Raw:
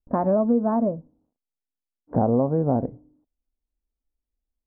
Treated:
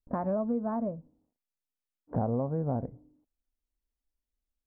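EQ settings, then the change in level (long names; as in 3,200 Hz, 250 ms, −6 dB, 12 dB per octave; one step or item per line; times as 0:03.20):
dynamic equaliser 820 Hz, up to −4 dB, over −34 dBFS, Q 0.88
dynamic equaliser 310 Hz, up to −7 dB, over −35 dBFS, Q 0.92
−4.0 dB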